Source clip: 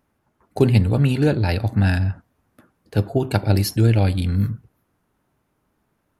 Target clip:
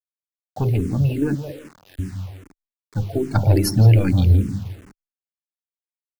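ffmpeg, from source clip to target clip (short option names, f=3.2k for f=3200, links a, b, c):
-filter_complex "[0:a]asoftclip=type=tanh:threshold=-12.5dB,lowshelf=f=120:g=5,bandreject=f=50:t=h:w=6,bandreject=f=100:t=h:w=6,bandreject=f=150:t=h:w=6,bandreject=f=200:t=h:w=6,bandreject=f=250:t=h:w=6,bandreject=f=300:t=h:w=6,bandreject=f=350:t=h:w=6,bandreject=f=400:t=h:w=6,bandreject=f=450:t=h:w=6,asettb=1/sr,asplit=3[a][b][c];[a]atrim=end=1.354[d];[b]atrim=start=1.35:end=1.99,asetpts=PTS-STARTPTS,afade=t=in:d=0.004:c=qsin,afade=t=out:st=0.636:d=0.004:c=qsin,asplit=3[e][f][g];[e]bandpass=f=530:t=q:w=8,volume=0dB[h];[f]bandpass=f=1.84k:t=q:w=8,volume=-6dB[i];[g]bandpass=f=2.48k:t=q:w=8,volume=-9dB[j];[h][i][j]amix=inputs=3:normalize=0[k];[c]atrim=start=1.986[l];[d][k]acrossfade=d=0.004:c1=hsin:c2=qsin[m];[m][l]acrossfade=d=0.004:c1=qsin:c2=hsin,asettb=1/sr,asplit=3[n][o][p];[n]atrim=end=3.354[q];[o]atrim=start=3.35:end=4.43,asetpts=PTS-STARTPTS,afade=t=in:d=0.004:c=qsin,afade=t=out:st=1.076:d=0.004:c=qsin,acontrast=88[r];[p]atrim=start=4.426[s];[q][r]acrossfade=d=0.004:c1=hsin:c2=qsin[t];[t][s]acrossfade=d=0.004:c1=qsin:c2=hsin,afftdn=nr=13:nf=-27,asplit=2[u][v];[v]adelay=167,lowpass=f=1.8k:p=1,volume=-10dB,asplit=2[w][x];[x]adelay=167,lowpass=f=1.8k:p=1,volume=0.29,asplit=2[y][z];[z]adelay=167,lowpass=f=1.8k:p=1,volume=0.29[aa];[w][y][aa]amix=inputs=3:normalize=0[ab];[u][ab]amix=inputs=2:normalize=0,acrusher=bits=6:mix=0:aa=0.000001,equalizer=f=300:t=o:w=0.7:g=4.5,asplit=2[ac][ad];[ad]afreqshift=-2.5[ae];[ac][ae]amix=inputs=2:normalize=1"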